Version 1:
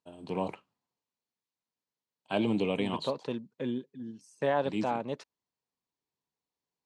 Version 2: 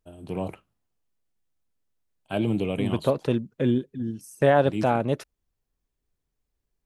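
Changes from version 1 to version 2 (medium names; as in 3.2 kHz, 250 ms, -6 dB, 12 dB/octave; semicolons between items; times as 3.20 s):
second voice +8.0 dB; master: remove cabinet simulation 200–7700 Hz, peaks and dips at 340 Hz -4 dB, 650 Hz -3 dB, 960 Hz +6 dB, 1.4 kHz -4 dB, 4.3 kHz +5 dB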